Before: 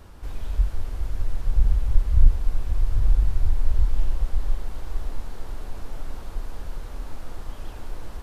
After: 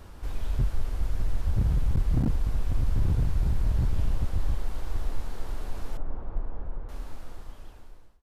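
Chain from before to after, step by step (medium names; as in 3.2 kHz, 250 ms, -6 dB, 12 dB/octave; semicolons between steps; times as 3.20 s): fade out at the end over 1.85 s; 5.97–6.89 s: low-pass 1.1 kHz 12 dB/octave; wavefolder -17 dBFS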